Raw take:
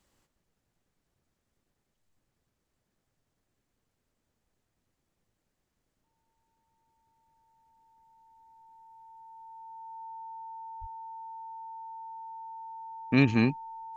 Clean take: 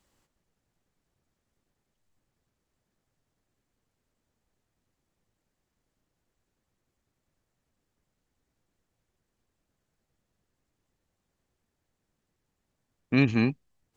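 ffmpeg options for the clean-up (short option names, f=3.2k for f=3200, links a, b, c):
-filter_complex "[0:a]bandreject=f=900:w=30,asplit=3[a][b][c];[a]afade=t=out:st=10.8:d=0.02[d];[b]highpass=f=140:w=0.5412,highpass=f=140:w=1.3066,afade=t=in:st=10.8:d=0.02,afade=t=out:st=10.92:d=0.02[e];[c]afade=t=in:st=10.92:d=0.02[f];[d][e][f]amix=inputs=3:normalize=0"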